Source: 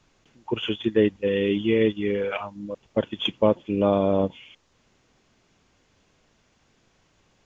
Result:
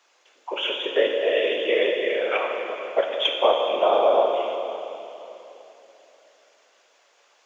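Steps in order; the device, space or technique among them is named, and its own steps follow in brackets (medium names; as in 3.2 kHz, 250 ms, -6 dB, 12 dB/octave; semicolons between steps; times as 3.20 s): whispering ghost (whisper effect; high-pass 510 Hz 24 dB/octave; reverberation RT60 3.2 s, pre-delay 12 ms, DRR 1.5 dB); trim +4 dB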